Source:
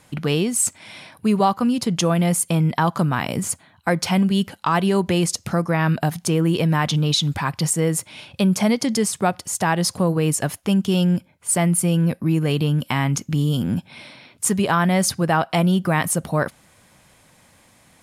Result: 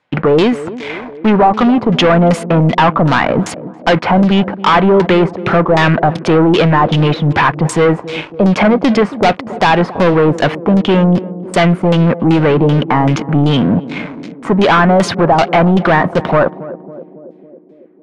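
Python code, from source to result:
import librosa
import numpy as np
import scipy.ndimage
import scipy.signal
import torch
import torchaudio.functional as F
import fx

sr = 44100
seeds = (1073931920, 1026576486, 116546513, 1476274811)

p1 = scipy.signal.sosfilt(scipy.signal.butter(2, 74.0, 'highpass', fs=sr, output='sos'), x)
p2 = fx.bass_treble(p1, sr, bass_db=-10, treble_db=-13)
p3 = fx.leveller(p2, sr, passes=5)
p4 = fx.filter_lfo_lowpass(p3, sr, shape='saw_down', hz=2.6, low_hz=600.0, high_hz=5500.0, q=1.1)
p5 = p4 + fx.echo_banded(p4, sr, ms=276, feedback_pct=72, hz=330.0, wet_db=-13.5, dry=0)
y = F.gain(torch.from_numpy(p5), 1.0).numpy()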